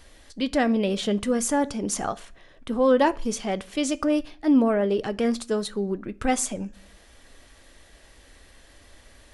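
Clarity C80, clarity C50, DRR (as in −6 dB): 27.5 dB, 23.0 dB, 11.5 dB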